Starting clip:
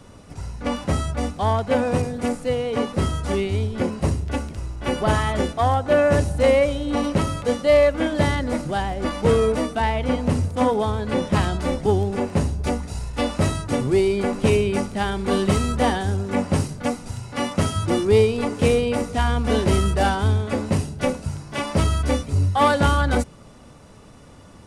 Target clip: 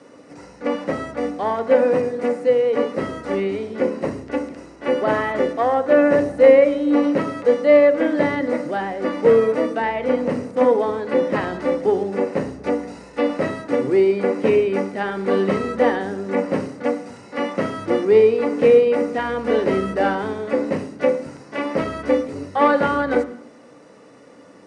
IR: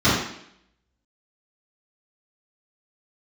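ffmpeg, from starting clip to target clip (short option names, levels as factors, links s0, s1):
-filter_complex "[0:a]highpass=270,equalizer=f=290:t=q:w=4:g=6,equalizer=f=500:t=q:w=4:g=10,equalizer=f=1900:t=q:w=4:g=7,equalizer=f=3400:t=q:w=4:g=-6,equalizer=f=7200:t=q:w=4:g=-4,lowpass=f=8600:w=0.5412,lowpass=f=8600:w=1.3066,acrossover=split=3600[s0][s1];[s1]acompressor=threshold=0.00316:ratio=4:attack=1:release=60[s2];[s0][s2]amix=inputs=2:normalize=0,asplit=2[s3][s4];[1:a]atrim=start_sample=2205[s5];[s4][s5]afir=irnorm=-1:irlink=0,volume=0.0266[s6];[s3][s6]amix=inputs=2:normalize=0,volume=0.841"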